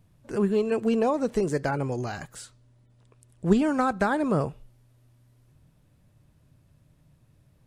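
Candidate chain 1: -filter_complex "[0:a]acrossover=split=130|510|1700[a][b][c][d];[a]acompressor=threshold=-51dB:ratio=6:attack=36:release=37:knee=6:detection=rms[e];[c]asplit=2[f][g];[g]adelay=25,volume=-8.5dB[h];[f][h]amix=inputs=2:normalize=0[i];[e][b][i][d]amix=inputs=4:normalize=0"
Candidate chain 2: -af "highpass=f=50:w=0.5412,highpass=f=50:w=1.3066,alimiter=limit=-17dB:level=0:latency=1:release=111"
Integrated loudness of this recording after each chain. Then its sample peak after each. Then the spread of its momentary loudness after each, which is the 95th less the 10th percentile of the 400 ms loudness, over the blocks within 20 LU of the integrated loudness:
-26.5, -28.0 LUFS; -9.0, -17.0 dBFS; 12, 11 LU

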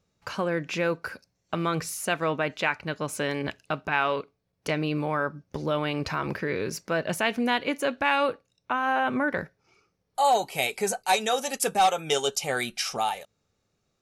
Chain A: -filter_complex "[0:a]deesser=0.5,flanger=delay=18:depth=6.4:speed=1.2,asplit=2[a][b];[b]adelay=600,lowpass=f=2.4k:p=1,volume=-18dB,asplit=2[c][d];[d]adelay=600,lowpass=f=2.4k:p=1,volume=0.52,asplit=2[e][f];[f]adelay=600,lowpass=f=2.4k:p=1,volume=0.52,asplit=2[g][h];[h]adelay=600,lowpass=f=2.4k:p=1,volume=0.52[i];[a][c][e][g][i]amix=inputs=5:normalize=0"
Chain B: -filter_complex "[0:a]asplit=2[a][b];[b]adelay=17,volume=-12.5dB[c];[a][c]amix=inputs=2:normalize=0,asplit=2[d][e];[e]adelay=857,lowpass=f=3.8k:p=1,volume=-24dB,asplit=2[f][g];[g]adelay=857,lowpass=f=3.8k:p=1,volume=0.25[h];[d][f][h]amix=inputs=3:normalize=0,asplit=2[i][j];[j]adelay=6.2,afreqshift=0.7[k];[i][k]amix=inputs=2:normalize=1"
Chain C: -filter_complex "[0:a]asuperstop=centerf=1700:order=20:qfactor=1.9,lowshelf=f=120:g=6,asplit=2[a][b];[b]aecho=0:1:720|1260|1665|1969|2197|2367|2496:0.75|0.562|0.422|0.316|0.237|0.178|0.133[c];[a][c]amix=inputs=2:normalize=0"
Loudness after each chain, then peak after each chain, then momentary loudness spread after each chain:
-30.5, -30.0, -25.0 LUFS; -10.0, -11.0, -8.5 dBFS; 15, 11, 6 LU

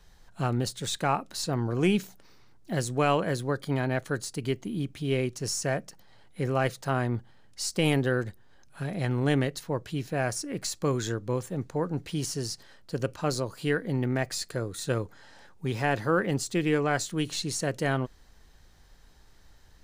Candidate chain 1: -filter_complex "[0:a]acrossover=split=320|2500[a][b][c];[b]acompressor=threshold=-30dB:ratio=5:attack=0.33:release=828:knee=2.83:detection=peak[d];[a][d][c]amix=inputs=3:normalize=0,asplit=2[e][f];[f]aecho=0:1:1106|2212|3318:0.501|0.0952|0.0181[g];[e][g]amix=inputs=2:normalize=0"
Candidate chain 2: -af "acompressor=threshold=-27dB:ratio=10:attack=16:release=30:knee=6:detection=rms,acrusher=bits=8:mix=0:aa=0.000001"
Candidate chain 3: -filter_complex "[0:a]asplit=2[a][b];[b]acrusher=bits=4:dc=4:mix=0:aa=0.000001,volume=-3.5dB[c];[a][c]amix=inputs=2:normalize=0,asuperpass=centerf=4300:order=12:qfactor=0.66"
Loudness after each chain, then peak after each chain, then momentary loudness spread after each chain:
-31.5, -32.5, -33.5 LUFS; -15.5, -16.0, -12.5 dBFS; 9, 7, 12 LU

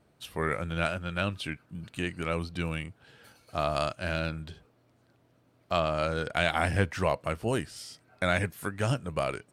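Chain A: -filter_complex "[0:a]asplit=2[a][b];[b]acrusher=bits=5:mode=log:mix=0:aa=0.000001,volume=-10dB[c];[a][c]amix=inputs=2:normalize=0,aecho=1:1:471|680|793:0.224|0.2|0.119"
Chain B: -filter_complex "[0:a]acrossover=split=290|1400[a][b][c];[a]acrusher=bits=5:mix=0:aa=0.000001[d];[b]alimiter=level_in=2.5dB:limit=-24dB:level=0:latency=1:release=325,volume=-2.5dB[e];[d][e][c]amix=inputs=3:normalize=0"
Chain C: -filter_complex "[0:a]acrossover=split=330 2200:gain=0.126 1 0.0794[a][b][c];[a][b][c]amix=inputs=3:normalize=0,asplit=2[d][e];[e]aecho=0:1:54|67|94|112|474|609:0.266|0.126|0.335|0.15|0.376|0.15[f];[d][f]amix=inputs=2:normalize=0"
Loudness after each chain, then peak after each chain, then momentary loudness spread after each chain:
-28.5, -32.5, -33.0 LUFS; -7.0, -13.5, -14.0 dBFS; 13, 12, 14 LU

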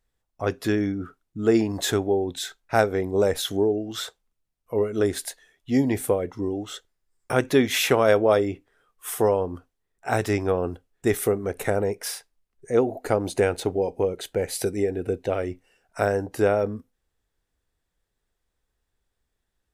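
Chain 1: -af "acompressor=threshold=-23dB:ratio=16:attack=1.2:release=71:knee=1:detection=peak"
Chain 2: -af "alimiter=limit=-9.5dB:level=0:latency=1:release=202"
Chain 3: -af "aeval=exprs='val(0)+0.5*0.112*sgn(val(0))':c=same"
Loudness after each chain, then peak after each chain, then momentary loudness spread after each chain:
-31.0, -25.5, -21.0 LUFS; -16.5, -9.5, -3.5 dBFS; 7, 12, 9 LU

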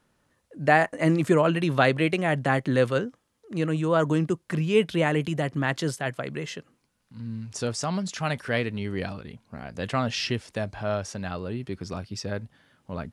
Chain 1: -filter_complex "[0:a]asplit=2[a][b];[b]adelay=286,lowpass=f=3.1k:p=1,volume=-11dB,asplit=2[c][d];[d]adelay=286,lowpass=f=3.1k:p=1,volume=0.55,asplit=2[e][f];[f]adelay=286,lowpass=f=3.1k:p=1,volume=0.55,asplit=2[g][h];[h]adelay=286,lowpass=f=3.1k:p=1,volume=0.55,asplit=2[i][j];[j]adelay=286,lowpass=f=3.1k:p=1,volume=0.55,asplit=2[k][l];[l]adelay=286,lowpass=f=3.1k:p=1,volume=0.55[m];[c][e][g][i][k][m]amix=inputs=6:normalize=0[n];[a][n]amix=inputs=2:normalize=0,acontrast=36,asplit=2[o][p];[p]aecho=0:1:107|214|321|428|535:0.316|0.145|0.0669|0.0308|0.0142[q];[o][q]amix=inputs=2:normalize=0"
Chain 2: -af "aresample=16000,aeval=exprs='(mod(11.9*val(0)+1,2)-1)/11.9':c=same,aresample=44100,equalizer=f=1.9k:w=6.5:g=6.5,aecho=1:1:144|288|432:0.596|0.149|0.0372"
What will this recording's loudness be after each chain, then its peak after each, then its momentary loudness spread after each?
-20.5, -27.0 LUFS; -2.5, -13.5 dBFS; 15, 12 LU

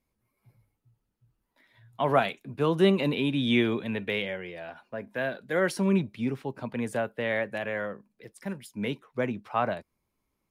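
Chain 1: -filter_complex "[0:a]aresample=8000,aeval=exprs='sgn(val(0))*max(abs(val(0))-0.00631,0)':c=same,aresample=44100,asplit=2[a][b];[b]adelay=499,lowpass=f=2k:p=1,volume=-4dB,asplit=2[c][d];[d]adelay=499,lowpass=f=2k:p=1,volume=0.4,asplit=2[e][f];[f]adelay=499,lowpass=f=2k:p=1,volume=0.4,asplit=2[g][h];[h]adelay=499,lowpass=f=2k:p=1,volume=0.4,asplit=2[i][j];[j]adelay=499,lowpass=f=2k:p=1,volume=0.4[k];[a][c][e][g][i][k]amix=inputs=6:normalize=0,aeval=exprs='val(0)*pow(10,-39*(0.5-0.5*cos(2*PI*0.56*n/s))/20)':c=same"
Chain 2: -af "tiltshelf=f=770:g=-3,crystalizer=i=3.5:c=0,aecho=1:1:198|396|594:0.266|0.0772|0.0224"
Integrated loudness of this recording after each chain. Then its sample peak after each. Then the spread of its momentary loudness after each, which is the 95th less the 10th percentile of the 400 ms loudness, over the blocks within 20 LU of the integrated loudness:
-33.0, -26.5 LUFS; -12.5, -8.0 dBFS; 22, 14 LU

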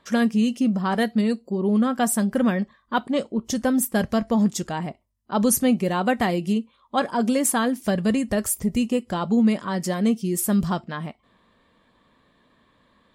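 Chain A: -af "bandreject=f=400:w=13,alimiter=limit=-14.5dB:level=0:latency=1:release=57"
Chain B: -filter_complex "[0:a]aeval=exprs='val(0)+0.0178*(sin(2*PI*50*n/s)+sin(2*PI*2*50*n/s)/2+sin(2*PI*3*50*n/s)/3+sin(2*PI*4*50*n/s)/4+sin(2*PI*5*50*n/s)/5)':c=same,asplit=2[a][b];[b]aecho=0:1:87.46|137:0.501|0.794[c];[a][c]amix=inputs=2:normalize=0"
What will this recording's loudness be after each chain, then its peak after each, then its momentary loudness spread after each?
-24.5, -20.5 LUFS; -14.5, -5.0 dBFS; 6, 20 LU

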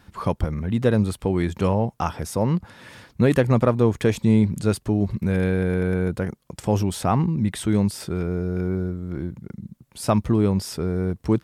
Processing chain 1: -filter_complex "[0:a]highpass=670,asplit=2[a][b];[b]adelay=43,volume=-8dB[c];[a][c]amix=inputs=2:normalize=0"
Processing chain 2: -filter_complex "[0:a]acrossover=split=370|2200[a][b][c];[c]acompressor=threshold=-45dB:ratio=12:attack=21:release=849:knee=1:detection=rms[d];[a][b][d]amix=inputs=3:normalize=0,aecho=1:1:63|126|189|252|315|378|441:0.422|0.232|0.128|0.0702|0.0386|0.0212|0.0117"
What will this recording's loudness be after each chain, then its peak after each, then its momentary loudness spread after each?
-31.5, -22.0 LUFS; -8.5, -4.0 dBFS; 13, 13 LU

